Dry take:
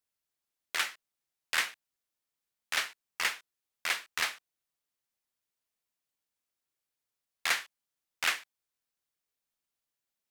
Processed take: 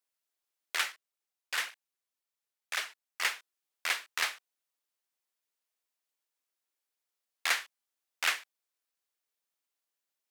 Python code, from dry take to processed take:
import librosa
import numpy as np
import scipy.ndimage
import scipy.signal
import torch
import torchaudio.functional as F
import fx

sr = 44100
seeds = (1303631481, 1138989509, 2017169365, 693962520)

y = scipy.signal.sosfilt(scipy.signal.butter(2, 340.0, 'highpass', fs=sr, output='sos'), x)
y = fx.flanger_cancel(y, sr, hz=1.9, depth_ms=6.8, at=(0.92, 3.22))